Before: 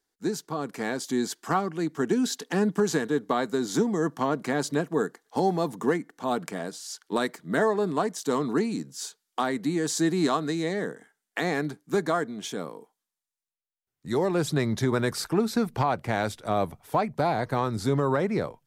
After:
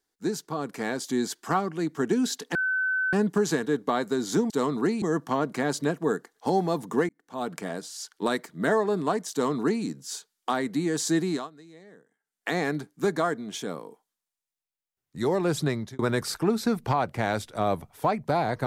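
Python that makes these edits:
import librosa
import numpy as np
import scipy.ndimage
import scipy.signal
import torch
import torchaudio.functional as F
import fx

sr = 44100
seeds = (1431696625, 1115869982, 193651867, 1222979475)

y = fx.edit(x, sr, fx.insert_tone(at_s=2.55, length_s=0.58, hz=1520.0, db=-23.0),
    fx.fade_in_span(start_s=5.99, length_s=0.54),
    fx.duplicate(start_s=8.22, length_s=0.52, to_s=3.92),
    fx.fade_down_up(start_s=10.1, length_s=1.29, db=-21.5, fade_s=0.3),
    fx.fade_out_span(start_s=14.54, length_s=0.35), tone=tone)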